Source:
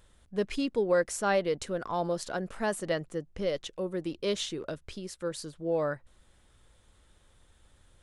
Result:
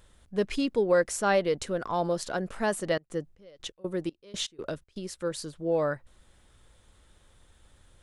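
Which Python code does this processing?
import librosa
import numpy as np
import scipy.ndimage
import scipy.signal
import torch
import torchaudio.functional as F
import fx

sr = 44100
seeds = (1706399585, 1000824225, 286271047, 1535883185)

y = fx.step_gate(x, sr, bpm=121, pattern='.xx..x.xx.xx..x', floor_db=-24.0, edge_ms=4.5, at=(2.84, 5.11), fade=0.02)
y = y * librosa.db_to_amplitude(2.5)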